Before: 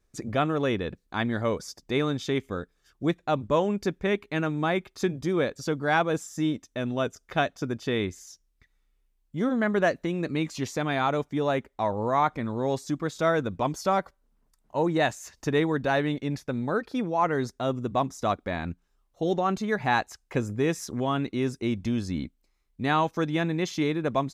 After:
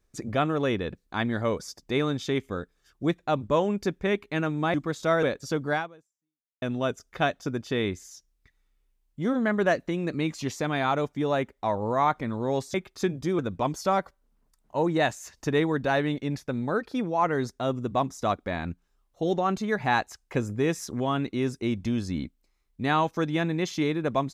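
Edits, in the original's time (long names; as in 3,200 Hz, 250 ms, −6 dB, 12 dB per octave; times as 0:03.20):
0:04.74–0:05.39: swap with 0:12.90–0:13.39
0:05.89–0:06.78: fade out exponential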